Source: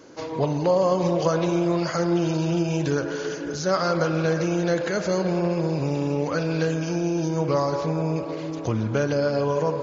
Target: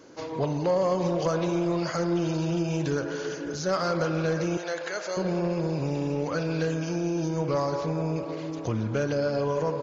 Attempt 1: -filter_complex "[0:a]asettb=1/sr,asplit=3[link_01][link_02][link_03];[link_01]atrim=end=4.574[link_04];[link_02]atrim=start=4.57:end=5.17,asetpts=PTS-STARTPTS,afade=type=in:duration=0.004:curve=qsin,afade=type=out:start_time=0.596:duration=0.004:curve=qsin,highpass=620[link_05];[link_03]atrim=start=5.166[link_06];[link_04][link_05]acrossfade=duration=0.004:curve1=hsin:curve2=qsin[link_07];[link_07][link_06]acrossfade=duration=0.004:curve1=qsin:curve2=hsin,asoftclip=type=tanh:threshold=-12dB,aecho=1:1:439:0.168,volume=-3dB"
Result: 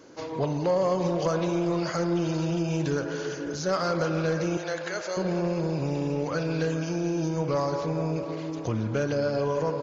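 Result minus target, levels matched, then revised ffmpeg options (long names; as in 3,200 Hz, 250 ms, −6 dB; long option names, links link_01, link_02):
echo-to-direct +11 dB
-filter_complex "[0:a]asettb=1/sr,asplit=3[link_01][link_02][link_03];[link_01]atrim=end=4.574[link_04];[link_02]atrim=start=4.57:end=5.17,asetpts=PTS-STARTPTS,afade=type=in:duration=0.004:curve=qsin,afade=type=out:start_time=0.596:duration=0.004:curve=qsin,highpass=620[link_05];[link_03]atrim=start=5.166[link_06];[link_04][link_05]acrossfade=duration=0.004:curve1=hsin:curve2=qsin[link_07];[link_07][link_06]acrossfade=duration=0.004:curve1=qsin:curve2=hsin,asoftclip=type=tanh:threshold=-12dB,aecho=1:1:439:0.0473,volume=-3dB"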